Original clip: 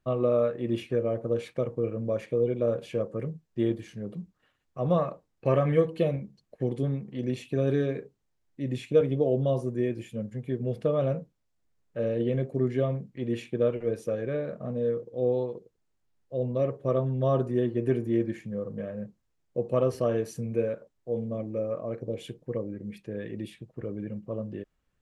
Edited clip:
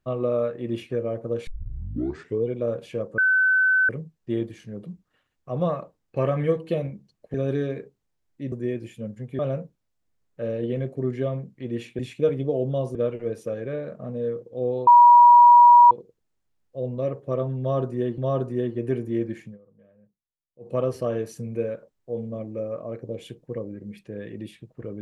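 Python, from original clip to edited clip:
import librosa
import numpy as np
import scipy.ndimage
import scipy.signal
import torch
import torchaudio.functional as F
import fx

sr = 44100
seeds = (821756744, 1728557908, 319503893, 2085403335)

y = fx.edit(x, sr, fx.tape_start(start_s=1.47, length_s=0.98),
    fx.insert_tone(at_s=3.18, length_s=0.71, hz=1520.0, db=-16.0),
    fx.cut(start_s=6.63, length_s=0.9),
    fx.move(start_s=8.71, length_s=0.96, to_s=13.56),
    fx.cut(start_s=10.54, length_s=0.42),
    fx.insert_tone(at_s=15.48, length_s=1.04, hz=962.0, db=-8.0),
    fx.repeat(start_s=17.17, length_s=0.58, count=2),
    fx.fade_down_up(start_s=18.44, length_s=1.28, db=-22.0, fade_s=0.13), tone=tone)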